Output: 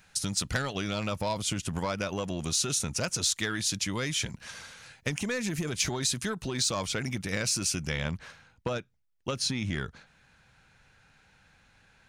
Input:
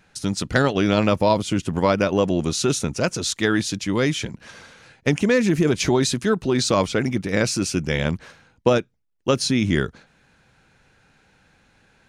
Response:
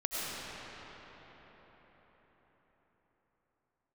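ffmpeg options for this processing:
-af "asoftclip=type=tanh:threshold=-8.5dB,asetnsamples=nb_out_samples=441:pad=0,asendcmd='7.9 highshelf g -2',highshelf=frequency=5700:gain=9,acompressor=threshold=-22dB:ratio=6,equalizer=frequency=340:width_type=o:width=1.8:gain=-8.5,volume=-1.5dB"

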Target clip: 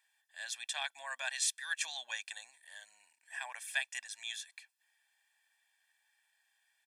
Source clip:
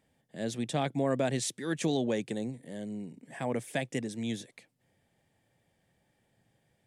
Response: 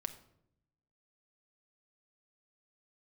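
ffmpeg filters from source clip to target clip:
-af "highpass=frequency=1200:width=0.5412,highpass=frequency=1200:width=1.3066,aecho=1:1:1.2:0.86"

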